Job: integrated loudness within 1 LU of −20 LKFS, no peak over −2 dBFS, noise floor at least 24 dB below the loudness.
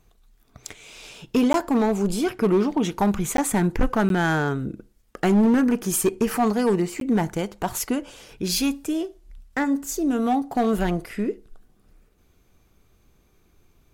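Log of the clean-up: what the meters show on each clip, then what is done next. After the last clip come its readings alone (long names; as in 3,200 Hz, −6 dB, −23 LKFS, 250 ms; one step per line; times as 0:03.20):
share of clipped samples 1.7%; peaks flattened at −14.0 dBFS; number of dropouts 4; longest dropout 12 ms; integrated loudness −23.0 LKFS; sample peak −14.0 dBFS; target loudness −20.0 LKFS
→ clipped peaks rebuilt −14 dBFS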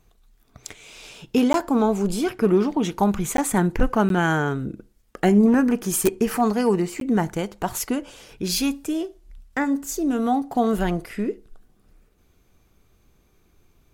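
share of clipped samples 0.0%; number of dropouts 4; longest dropout 12 ms
→ repair the gap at 0:01.53/0:03.37/0:04.09/0:07.00, 12 ms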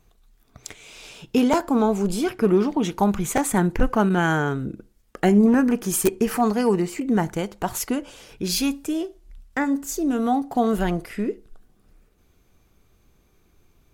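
number of dropouts 0; integrated loudness −22.5 LKFS; sample peak −5.0 dBFS; target loudness −20.0 LKFS
→ level +2.5 dB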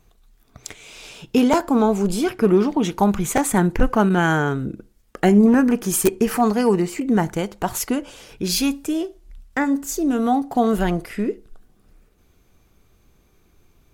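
integrated loudness −20.0 LKFS; sample peak −2.5 dBFS; background noise floor −59 dBFS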